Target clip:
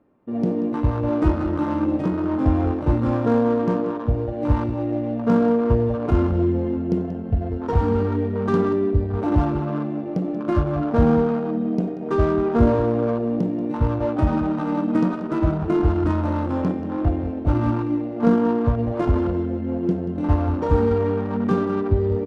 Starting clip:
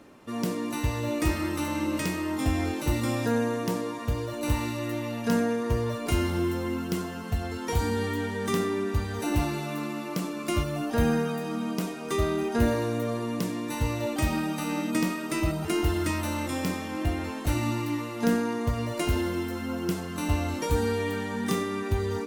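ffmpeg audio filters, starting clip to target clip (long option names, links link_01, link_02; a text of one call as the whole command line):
ffmpeg -i in.wav -af "afwtdn=0.0282,adynamicsmooth=sensitivity=6.5:basefreq=1300,aecho=1:1:184:0.224,volume=7.5dB" out.wav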